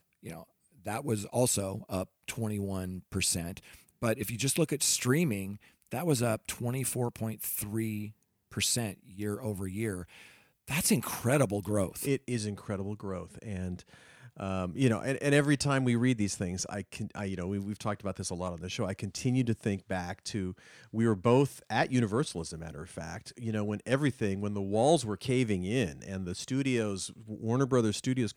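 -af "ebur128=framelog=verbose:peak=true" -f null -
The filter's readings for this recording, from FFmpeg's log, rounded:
Integrated loudness:
  I:         -31.6 LUFS
  Threshold: -42.0 LUFS
Loudness range:
  LRA:         4.2 LU
  Threshold: -52.0 LUFS
  LRA low:   -34.5 LUFS
  LRA high:  -30.2 LUFS
True peak:
  Peak:      -11.6 dBFS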